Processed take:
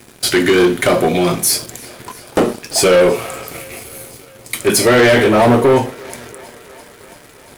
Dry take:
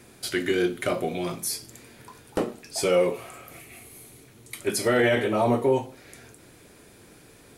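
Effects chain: waveshaping leveller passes 3; thinning echo 339 ms, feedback 77%, high-pass 280 Hz, level -23 dB; trim +5 dB

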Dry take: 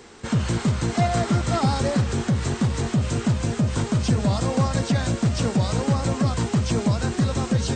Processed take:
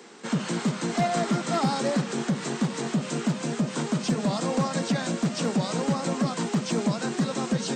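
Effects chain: steep high-pass 150 Hz 72 dB/octave; hard clipper -15.5 dBFS, distortion -24 dB; trim -1.5 dB

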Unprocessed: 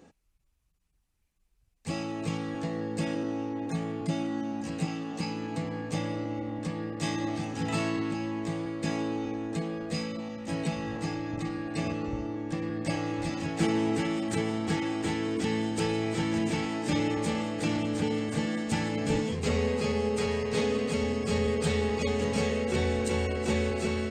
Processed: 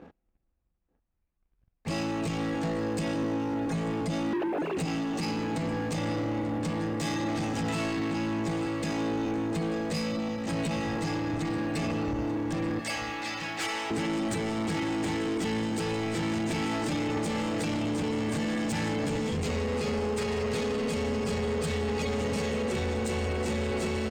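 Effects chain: 4.33–4.77 s: formants replaced by sine waves; 12.79–13.91 s: high-pass 1 kHz 12 dB/octave; delay 887 ms -17 dB; reverberation RT60 4.2 s, pre-delay 5 ms, DRR 19.5 dB; peak limiter -25 dBFS, peak gain reduction 10 dB; level-controlled noise filter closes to 1.6 kHz, open at -32 dBFS; waveshaping leveller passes 2

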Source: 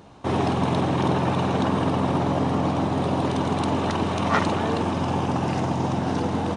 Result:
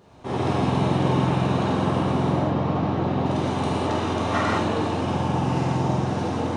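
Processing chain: 2.29–3.26 s: distance through air 140 m; gated-style reverb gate 240 ms flat, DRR -7 dB; trim -8 dB

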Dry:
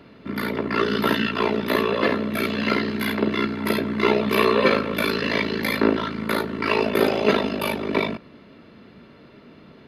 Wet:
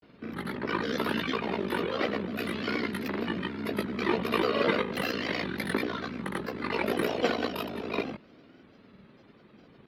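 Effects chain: granulator 100 ms, grains 20 per s, pitch spread up and down by 3 st; trim -7 dB

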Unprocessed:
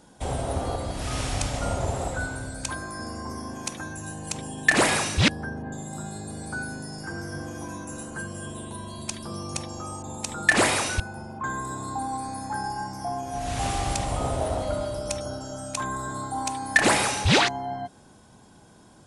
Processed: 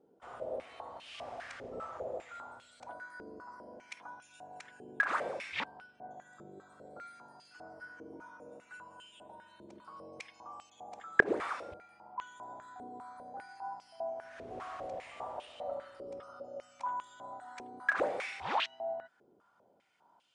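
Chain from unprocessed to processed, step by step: wide varispeed 0.937×; step-sequenced band-pass 5 Hz 410–2900 Hz; trim -3 dB

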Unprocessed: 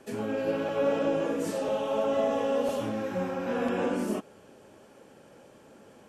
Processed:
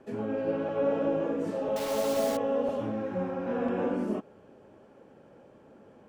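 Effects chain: low-pass 1.1 kHz 6 dB/octave; 1.76–2.37 s: word length cut 6-bit, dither none

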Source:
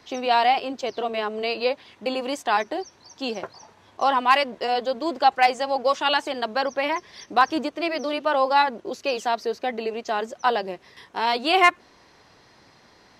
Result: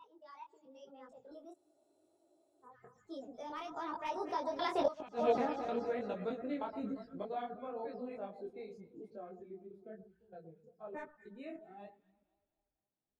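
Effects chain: slices played last to first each 264 ms, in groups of 3; Doppler pass-by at 4.95 s, 59 m/s, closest 4.3 m; echo whose repeats swap between lows and highs 116 ms, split 1.3 kHz, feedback 72%, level -10 dB; spectral noise reduction 15 dB; in parallel at +3 dB: compression, threshold -48 dBFS, peak gain reduction 26.5 dB; on the sum: tilt shelf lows +8.5 dB, about 820 Hz; inverted gate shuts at -17 dBFS, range -25 dB; spectral freeze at 1.56 s, 1.08 s; detune thickener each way 34 cents; trim +4.5 dB

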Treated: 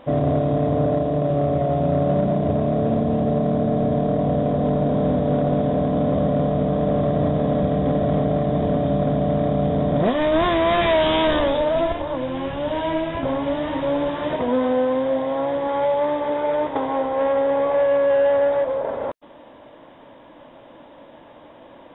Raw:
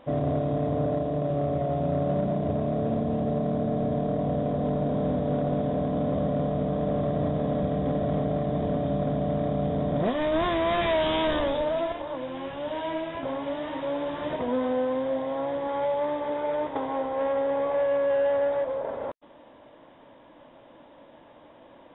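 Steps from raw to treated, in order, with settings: 11.75–14.10 s: bass shelf 160 Hz +11 dB; trim +6.5 dB

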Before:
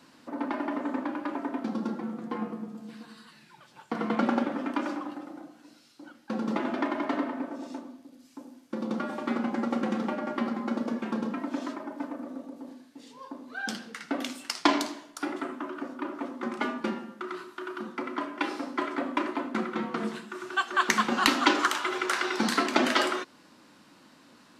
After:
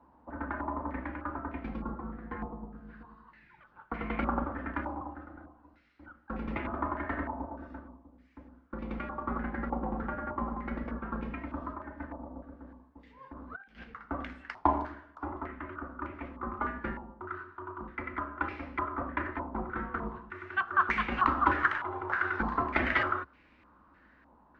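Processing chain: octave divider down 2 oct, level 0 dB; 13.33–13.84 s: compressor with a negative ratio -41 dBFS, ratio -0.5; step-sequenced low-pass 3.3 Hz 900–2300 Hz; trim -8.5 dB

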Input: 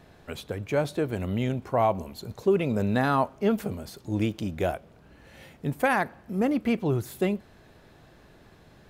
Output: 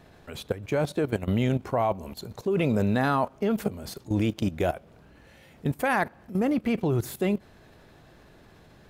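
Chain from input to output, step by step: level held to a coarse grid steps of 15 dB; trim +6.5 dB

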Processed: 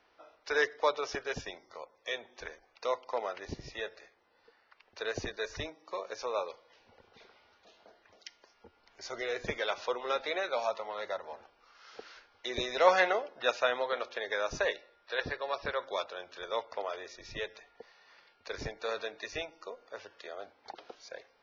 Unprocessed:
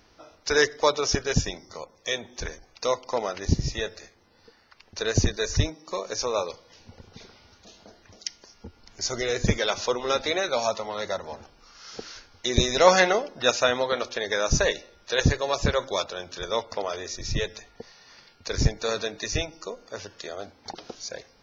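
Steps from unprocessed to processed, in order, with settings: 14.76–15.87 s: rippled Chebyshev low-pass 5.7 kHz, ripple 3 dB; three-band isolator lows -17 dB, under 380 Hz, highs -19 dB, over 3.7 kHz; trim -5.5 dB

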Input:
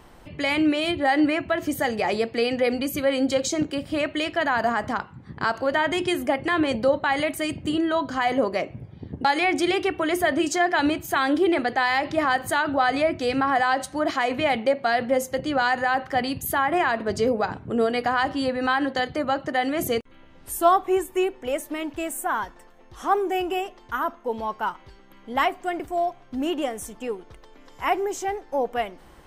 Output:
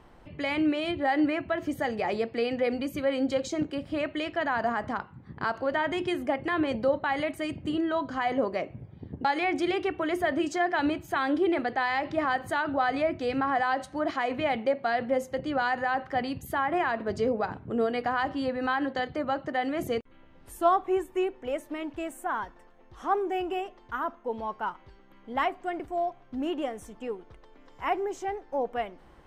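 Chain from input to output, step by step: low-pass 2.6 kHz 6 dB/octave; trim -4.5 dB

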